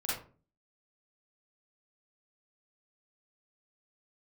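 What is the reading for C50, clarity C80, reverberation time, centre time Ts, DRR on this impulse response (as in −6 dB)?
0.0 dB, 7.5 dB, 0.40 s, 55 ms, −9.0 dB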